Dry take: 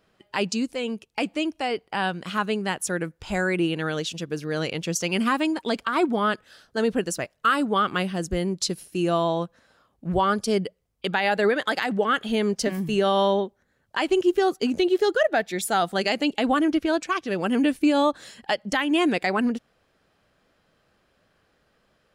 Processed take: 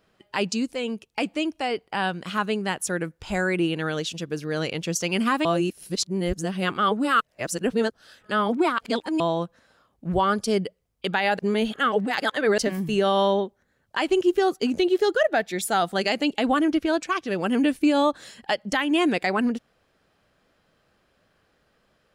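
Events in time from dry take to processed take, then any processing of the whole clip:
5.45–9.2 reverse
11.39–12.58 reverse

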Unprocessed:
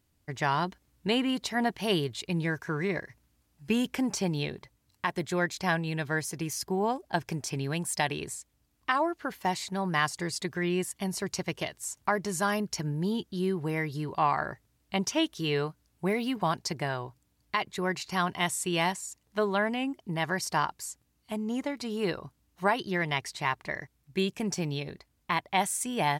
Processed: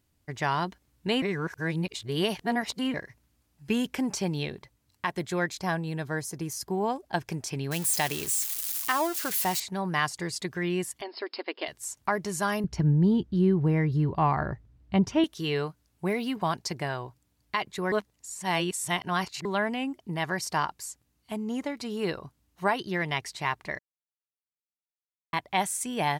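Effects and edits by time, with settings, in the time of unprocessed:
1.22–2.94 reverse
5.59–6.64 bell 2600 Hz -7.5 dB 1.3 oct
7.71–9.6 switching spikes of -23.5 dBFS
11.01–11.68 brick-wall FIR band-pass 240–5300 Hz
12.64–15.24 RIAA curve playback
17.92–19.45 reverse
23.79–25.33 mute

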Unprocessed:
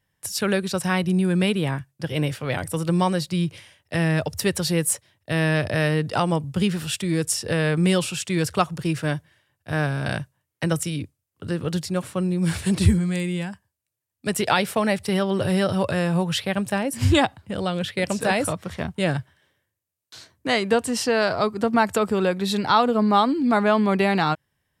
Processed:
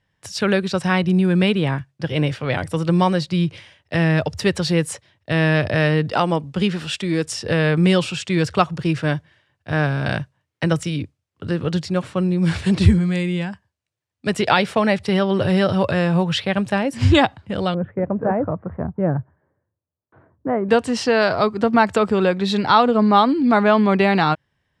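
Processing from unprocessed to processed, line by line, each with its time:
6.12–7.27 bell 110 Hz -13.5 dB 0.7 oct
17.74–20.69 Bessel low-pass 880 Hz, order 6
whole clip: LPF 4900 Hz 12 dB/oct; gain +4 dB

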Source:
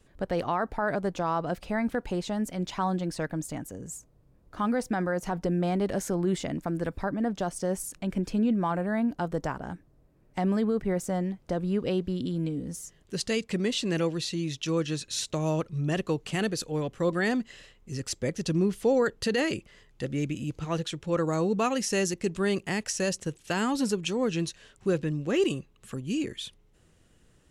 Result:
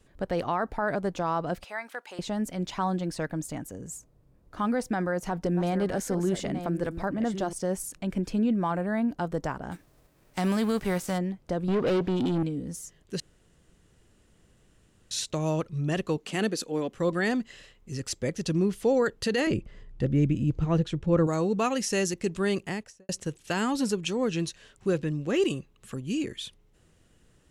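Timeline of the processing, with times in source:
1.64–2.19 HPF 890 Hz
4.76–7.53 reverse delay 0.694 s, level -9.5 dB
9.71–11.17 spectral whitening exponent 0.6
11.68–12.43 overdrive pedal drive 26 dB, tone 1500 Hz, clips at -18 dBFS
13.2–15.11 room tone
16.17–16.94 resonant low shelf 150 Hz -13.5 dB, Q 1.5
19.47–21.27 tilt -3 dB/oct
22.57–23.09 studio fade out

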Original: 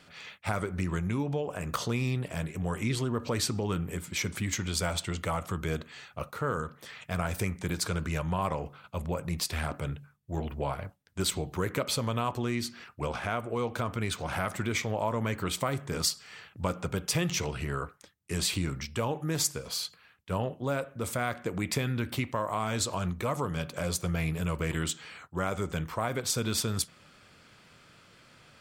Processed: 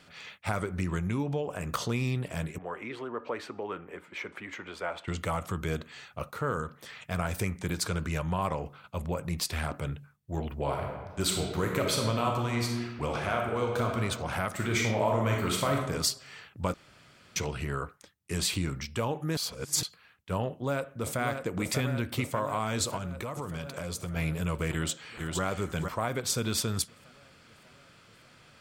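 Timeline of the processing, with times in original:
2.58–5.08 three-band isolator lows -23 dB, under 320 Hz, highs -24 dB, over 2600 Hz
10.58–13.97 reverb throw, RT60 1.4 s, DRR 1 dB
14.51–15.79 reverb throw, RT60 0.84 s, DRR -0.5 dB
16.74–17.36 room tone
19.37–19.83 reverse
20.47–21.21 echo throw 0.59 s, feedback 75%, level -6 dB
22.96–24.16 compressor 4:1, threshold -32 dBFS
24.71–25.42 echo throw 0.46 s, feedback 10%, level -4 dB

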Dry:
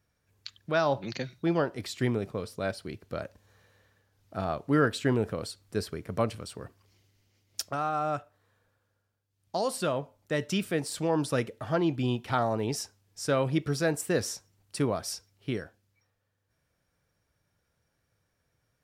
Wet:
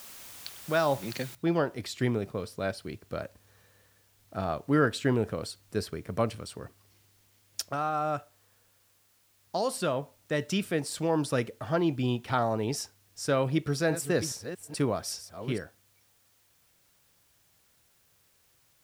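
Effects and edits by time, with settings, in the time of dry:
1.35 noise floor step -47 dB -67 dB
13.48–15.59 reverse delay 0.421 s, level -11 dB

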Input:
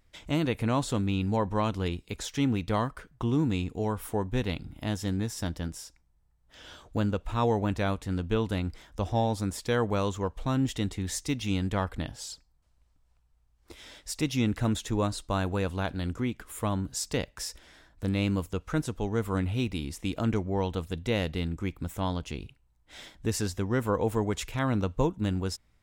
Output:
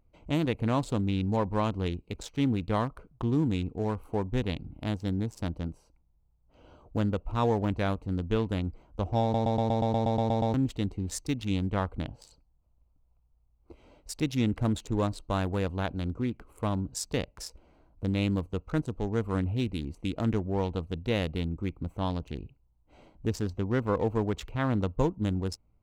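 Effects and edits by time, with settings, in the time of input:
9.22 stutter in place 0.12 s, 11 plays
23.29–24.71 bell 9500 Hz -8.5 dB
whole clip: Wiener smoothing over 25 samples

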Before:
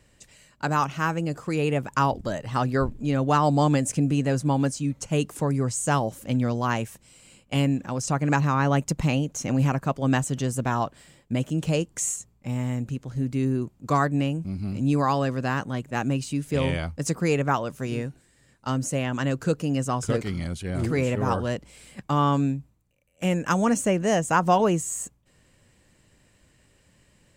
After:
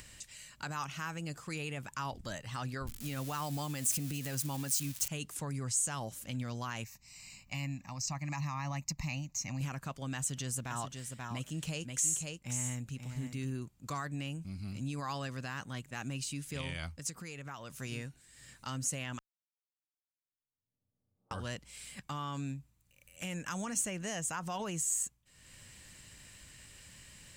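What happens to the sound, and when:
2.87–5.08 switching spikes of -27 dBFS
6.84–9.61 fixed phaser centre 2200 Hz, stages 8
10.17–13.56 echo 0.534 s -7.5 dB
16.88–17.72 compressor, threshold -30 dBFS
19.19–21.31 mute
whole clip: limiter -18 dBFS; passive tone stack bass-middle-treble 5-5-5; upward compressor, threshold -46 dBFS; gain +4.5 dB

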